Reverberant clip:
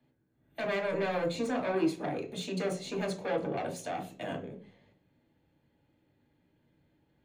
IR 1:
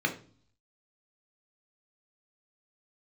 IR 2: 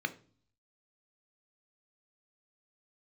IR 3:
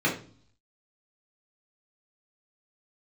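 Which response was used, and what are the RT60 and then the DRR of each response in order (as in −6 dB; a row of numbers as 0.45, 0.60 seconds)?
1; 0.45, 0.45, 0.45 seconds; 2.0, 8.5, −6.0 decibels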